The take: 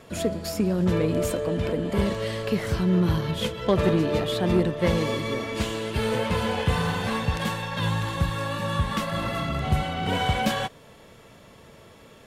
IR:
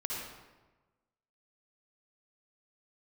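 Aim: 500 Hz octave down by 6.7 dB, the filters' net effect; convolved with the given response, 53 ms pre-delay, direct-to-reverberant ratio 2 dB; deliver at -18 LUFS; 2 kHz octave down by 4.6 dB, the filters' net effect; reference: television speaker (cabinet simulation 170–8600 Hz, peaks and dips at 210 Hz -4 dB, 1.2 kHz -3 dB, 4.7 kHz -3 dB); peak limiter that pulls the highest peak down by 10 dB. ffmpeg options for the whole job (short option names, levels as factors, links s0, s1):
-filter_complex "[0:a]equalizer=f=500:t=o:g=-8,equalizer=f=2000:t=o:g=-5,alimiter=limit=0.0841:level=0:latency=1,asplit=2[s0][s1];[1:a]atrim=start_sample=2205,adelay=53[s2];[s1][s2]afir=irnorm=-1:irlink=0,volume=0.562[s3];[s0][s3]amix=inputs=2:normalize=0,highpass=f=170:w=0.5412,highpass=f=170:w=1.3066,equalizer=f=210:t=q:w=4:g=-4,equalizer=f=1200:t=q:w=4:g=-3,equalizer=f=4700:t=q:w=4:g=-3,lowpass=f=8600:w=0.5412,lowpass=f=8600:w=1.3066,volume=4.73"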